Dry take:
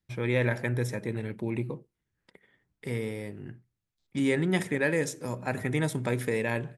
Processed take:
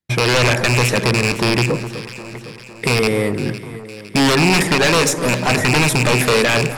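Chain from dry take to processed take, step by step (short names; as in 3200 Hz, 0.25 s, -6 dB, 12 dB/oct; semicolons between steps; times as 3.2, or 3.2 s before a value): rattling part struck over -32 dBFS, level -20 dBFS; gate -56 dBFS, range -24 dB; low shelf 94 Hz -11 dB; in parallel at +2 dB: compressor, threshold -34 dBFS, peak gain reduction 12 dB; on the sum: sine folder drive 12 dB, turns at -10.5 dBFS; on a send: echo with dull and thin repeats by turns 0.254 s, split 1400 Hz, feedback 72%, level -11 dB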